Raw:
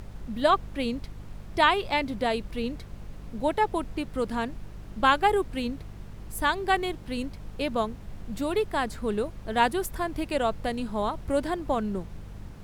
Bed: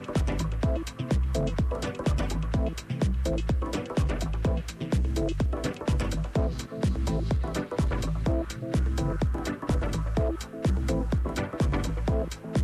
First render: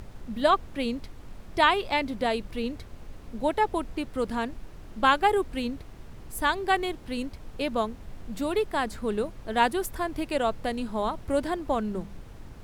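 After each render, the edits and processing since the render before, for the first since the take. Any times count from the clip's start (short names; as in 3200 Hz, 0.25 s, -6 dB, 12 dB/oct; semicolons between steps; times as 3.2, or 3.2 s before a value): de-hum 50 Hz, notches 4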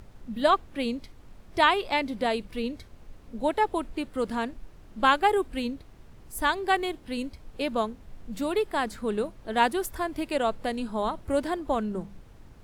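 noise print and reduce 6 dB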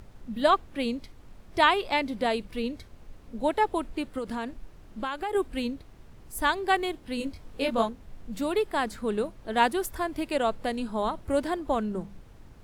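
4.18–5.35 compressor, threshold -28 dBFS; 7.18–7.89 doubler 22 ms -3 dB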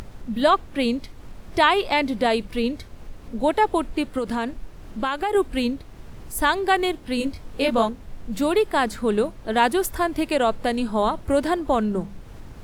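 in parallel at +2.5 dB: limiter -19 dBFS, peak gain reduction 11 dB; on the sum: upward compressor, threshold -32 dBFS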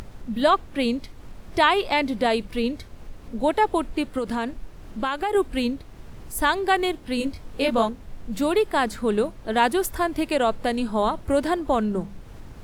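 gain -1 dB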